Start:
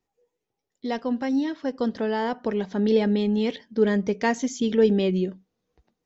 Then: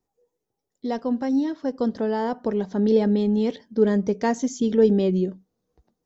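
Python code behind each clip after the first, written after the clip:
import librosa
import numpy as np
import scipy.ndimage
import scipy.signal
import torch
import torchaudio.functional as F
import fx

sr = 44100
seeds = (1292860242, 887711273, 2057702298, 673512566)

y = fx.peak_eq(x, sr, hz=2500.0, db=-10.0, octaves=1.5)
y = F.gain(torch.from_numpy(y), 2.0).numpy()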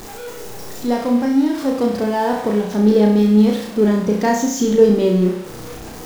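y = x + 0.5 * 10.0 ** (-32.5 / 20.0) * np.sign(x)
y = fx.room_flutter(y, sr, wall_m=5.7, rt60_s=0.61)
y = F.gain(torch.from_numpy(y), 3.5).numpy()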